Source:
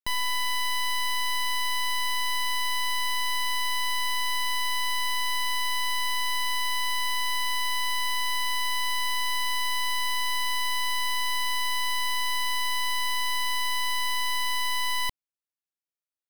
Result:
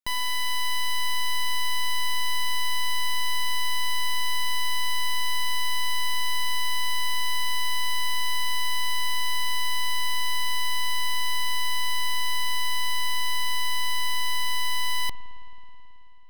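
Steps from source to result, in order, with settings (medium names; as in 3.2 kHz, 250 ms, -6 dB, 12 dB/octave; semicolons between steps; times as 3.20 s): spring tank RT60 3.8 s, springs 54 ms, chirp 70 ms, DRR 10.5 dB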